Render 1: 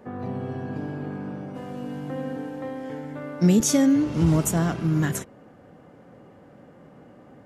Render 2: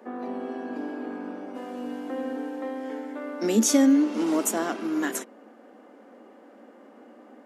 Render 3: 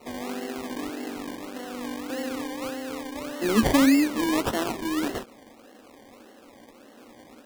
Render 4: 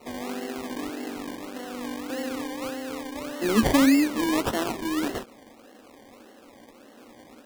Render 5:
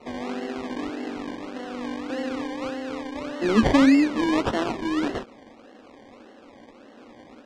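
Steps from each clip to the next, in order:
Chebyshev high-pass 220 Hz, order 6; trim +1 dB
decimation with a swept rate 26×, swing 60% 1.7 Hz
no audible change
distance through air 120 m; trim +2.5 dB

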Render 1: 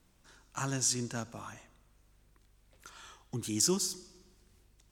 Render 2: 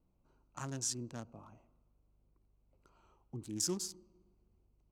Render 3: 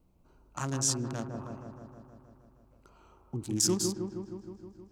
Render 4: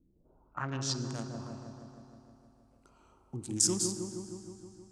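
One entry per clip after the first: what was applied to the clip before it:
local Wiener filter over 25 samples; trim -6.5 dB
feedback echo behind a low-pass 157 ms, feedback 70%, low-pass 1.2 kHz, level -4.5 dB; trim +8 dB
low-pass sweep 310 Hz -> 9.1 kHz, 0.09–1.13 s; reverberation RT60 2.8 s, pre-delay 29 ms, DRR 11.5 dB; trim -4 dB

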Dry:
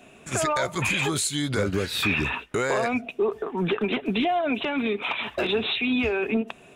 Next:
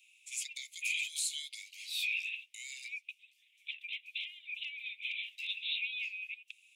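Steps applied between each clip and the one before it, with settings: steep high-pass 2.2 kHz 96 dB/octave; trim -8 dB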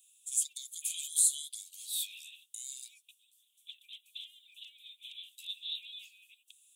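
FFT filter 1.4 kHz 0 dB, 2.2 kHz -27 dB, 3.4 kHz +2 dB, 5 kHz -4 dB, 8.3 kHz +14 dB; trim -2 dB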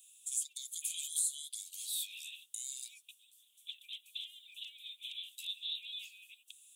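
compression 2:1, threshold -44 dBFS, peak gain reduction 12 dB; trim +4 dB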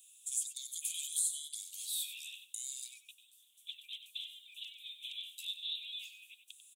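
delay 95 ms -11 dB

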